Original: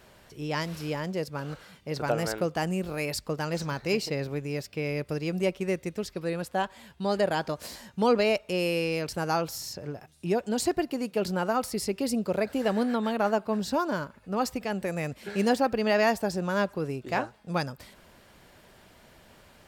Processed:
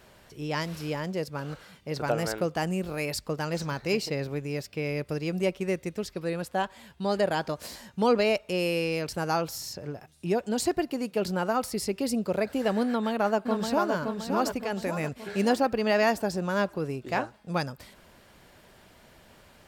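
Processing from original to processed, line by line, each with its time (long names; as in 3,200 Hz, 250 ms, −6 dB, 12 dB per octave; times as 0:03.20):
0:12.88–0:13.94: delay throw 570 ms, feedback 50%, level −4.5 dB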